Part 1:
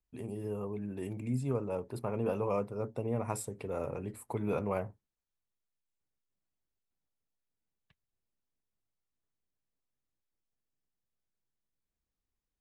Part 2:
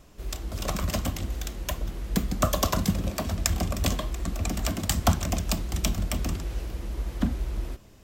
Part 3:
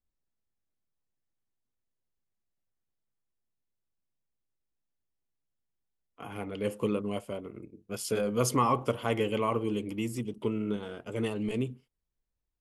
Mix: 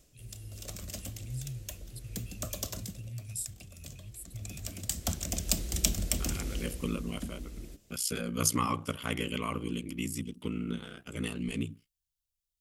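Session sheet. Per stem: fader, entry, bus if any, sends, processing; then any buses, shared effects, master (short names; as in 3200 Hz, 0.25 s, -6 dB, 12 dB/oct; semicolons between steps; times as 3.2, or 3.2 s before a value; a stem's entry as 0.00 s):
-2.0 dB, 0.00 s, no send, Chebyshev band-stop 130–2900 Hz, order 3
2.77 s -10.5 dB -> 3.12 s -17.5 dB -> 4.14 s -17.5 dB -> 4.88 s -8 dB -> 6.55 s -8 dB -> 7.14 s -17.5 dB, 0.00 s, no send, graphic EQ 500/1000/8000 Hz +4/-10/+4 dB; AGC gain up to 3.5 dB; auto duck -9 dB, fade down 0.20 s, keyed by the first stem
+1.0 dB, 0.00 s, no send, ring modulator 30 Hz; band shelf 610 Hz -9 dB; gate with hold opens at -45 dBFS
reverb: off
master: high shelf 3400 Hz +9 dB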